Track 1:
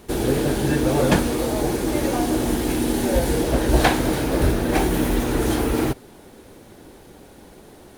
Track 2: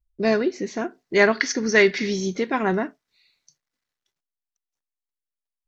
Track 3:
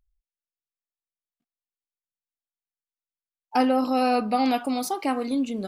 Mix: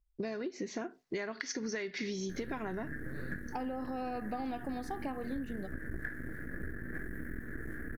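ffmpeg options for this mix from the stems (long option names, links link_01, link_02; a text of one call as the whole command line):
ffmpeg -i stem1.wav -i stem2.wav -i stem3.wav -filter_complex "[0:a]aeval=exprs='max(val(0),0)':channel_layout=same,firequalizer=gain_entry='entry(220,0);entry(890,-25);entry(1700,13);entry(2600,-25);entry(4400,-28);entry(12000,-11)':delay=0.05:min_phase=1,adelay=2200,volume=-14dB[link_01];[1:a]acompressor=threshold=-24dB:ratio=6,volume=-4dB[link_02];[2:a]lowpass=frequency=1800:poles=1,alimiter=limit=-16dB:level=0:latency=1,volume=-7.5dB[link_03];[link_01][link_02][link_03]amix=inputs=3:normalize=0,acompressor=threshold=-34dB:ratio=6" out.wav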